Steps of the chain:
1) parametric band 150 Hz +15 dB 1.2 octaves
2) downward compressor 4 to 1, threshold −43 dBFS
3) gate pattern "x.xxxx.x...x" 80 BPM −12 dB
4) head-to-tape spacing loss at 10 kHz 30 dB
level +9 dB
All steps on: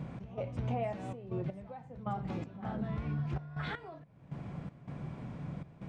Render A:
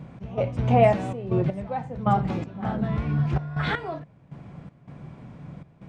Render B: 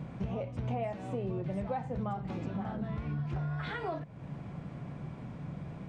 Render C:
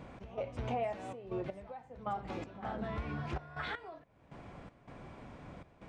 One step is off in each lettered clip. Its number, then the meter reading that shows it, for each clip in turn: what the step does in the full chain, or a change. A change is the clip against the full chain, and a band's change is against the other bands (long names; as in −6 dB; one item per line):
2, average gain reduction 8.5 dB
3, change in crest factor −2.0 dB
1, 125 Hz band −9.5 dB